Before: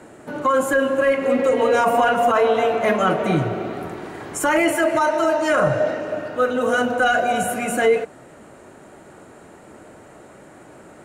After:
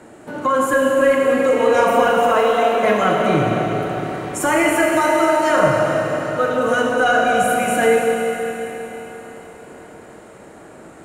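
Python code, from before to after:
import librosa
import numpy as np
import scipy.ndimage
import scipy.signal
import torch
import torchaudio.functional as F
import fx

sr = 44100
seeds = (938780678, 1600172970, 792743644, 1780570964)

y = fx.steep_highpass(x, sr, hz=190.0, slope=72, at=(2.34, 2.83))
y = fx.rev_schroeder(y, sr, rt60_s=4.0, comb_ms=27, drr_db=0.0)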